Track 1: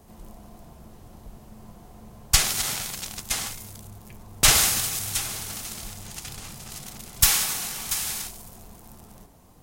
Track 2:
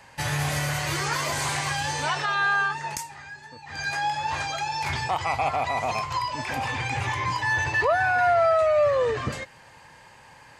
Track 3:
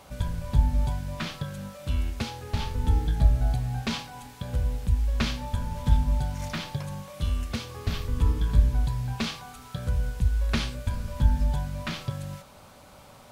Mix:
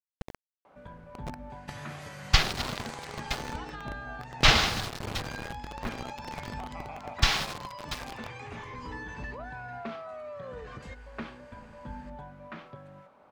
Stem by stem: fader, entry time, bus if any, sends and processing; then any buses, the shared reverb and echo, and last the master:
+2.0 dB, 0.00 s, no send, Wiener smoothing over 25 samples; LPF 4700 Hz 24 dB/oct; bit-crush 6-bit
-8.5 dB, 1.50 s, no send, compressor 6:1, threshold -32 dBFS, peak gain reduction 14 dB
-5.5 dB, 0.65 s, no send, three-band isolator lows -19 dB, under 210 Hz, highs -20 dB, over 2100 Hz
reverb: off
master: high shelf 9200 Hz -11.5 dB

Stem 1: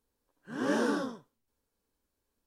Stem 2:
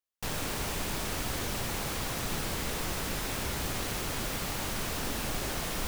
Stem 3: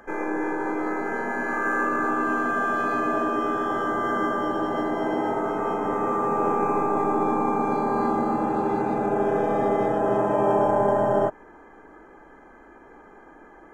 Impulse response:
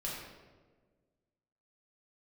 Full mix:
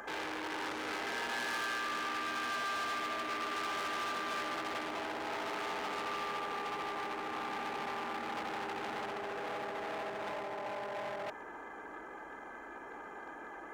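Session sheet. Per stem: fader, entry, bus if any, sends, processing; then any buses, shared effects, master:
-9.5 dB, 0.00 s, no send, dry
off
+3.0 dB, 0.00 s, no send, negative-ratio compressor -26 dBFS, ratio -0.5; overloaded stage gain 34.5 dB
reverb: off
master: HPF 44 Hz; low shelf 460 Hz -11.5 dB; core saturation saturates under 1800 Hz

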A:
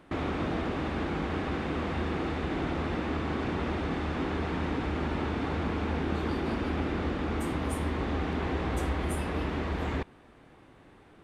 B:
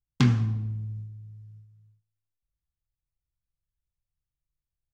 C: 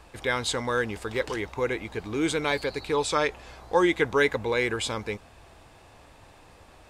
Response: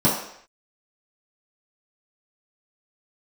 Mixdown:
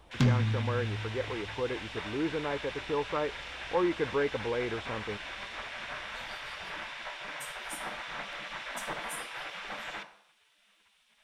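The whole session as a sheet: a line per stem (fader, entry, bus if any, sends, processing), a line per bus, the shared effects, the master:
+2.5 dB, 0.00 s, send -21.5 dB, spectral gate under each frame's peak -20 dB weak
-1.5 dB, 0.00 s, no send, dry
-5.0 dB, 0.00 s, no send, LPF 1300 Hz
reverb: on, pre-delay 3 ms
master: soft clip -17 dBFS, distortion -17 dB

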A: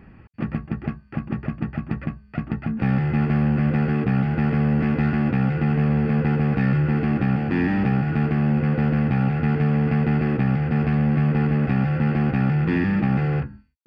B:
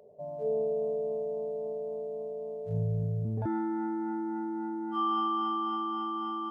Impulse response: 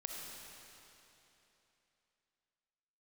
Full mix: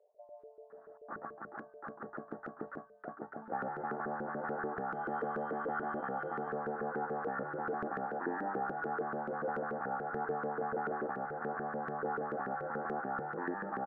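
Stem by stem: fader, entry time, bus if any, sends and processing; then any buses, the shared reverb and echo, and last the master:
+2.0 dB, 0.70 s, no send, elliptic low-pass 1600 Hz, stop band 50 dB; low shelf 82 Hz -11.5 dB
-4.5 dB, 0.00 s, no send, compressor, threshold -31 dBFS, peak gain reduction 5 dB; HPF 480 Hz 24 dB/oct; limiter -36 dBFS, peak gain reduction 8.5 dB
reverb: off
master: bell 96 Hz -14 dB 2.8 oct; LFO band-pass saw up 6.9 Hz 400–1500 Hz

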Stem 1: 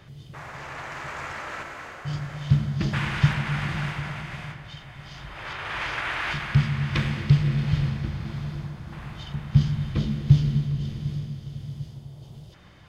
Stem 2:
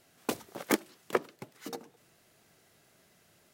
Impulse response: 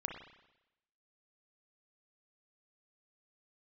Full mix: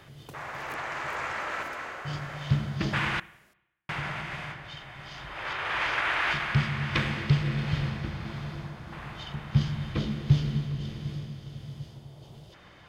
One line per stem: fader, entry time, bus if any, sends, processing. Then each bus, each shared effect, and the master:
+0.5 dB, 0.00 s, muted 3.2–3.89, send -12.5 dB, tone controls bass -8 dB, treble -4 dB
-8.0 dB, 0.00 s, no send, compressor 2:1, threshold -42 dBFS, peak gain reduction 12 dB; three-band squash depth 40%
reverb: on, RT60 0.95 s, pre-delay 31 ms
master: dry

